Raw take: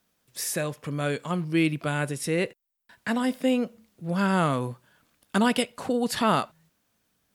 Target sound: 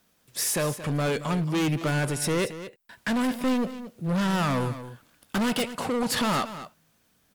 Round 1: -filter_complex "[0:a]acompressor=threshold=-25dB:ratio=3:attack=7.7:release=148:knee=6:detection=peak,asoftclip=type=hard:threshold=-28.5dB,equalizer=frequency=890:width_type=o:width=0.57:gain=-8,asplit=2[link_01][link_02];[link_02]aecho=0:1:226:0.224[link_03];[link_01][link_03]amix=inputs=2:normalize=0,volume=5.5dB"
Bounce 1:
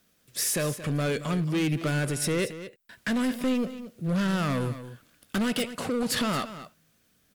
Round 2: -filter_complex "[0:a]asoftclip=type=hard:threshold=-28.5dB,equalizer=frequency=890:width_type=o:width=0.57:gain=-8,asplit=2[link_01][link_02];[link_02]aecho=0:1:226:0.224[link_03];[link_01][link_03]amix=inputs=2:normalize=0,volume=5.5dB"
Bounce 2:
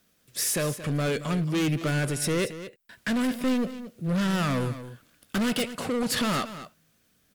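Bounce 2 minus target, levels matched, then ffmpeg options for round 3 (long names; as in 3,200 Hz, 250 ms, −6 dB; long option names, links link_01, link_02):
1,000 Hz band −3.5 dB
-filter_complex "[0:a]asoftclip=type=hard:threshold=-28.5dB,asplit=2[link_01][link_02];[link_02]aecho=0:1:226:0.224[link_03];[link_01][link_03]amix=inputs=2:normalize=0,volume=5.5dB"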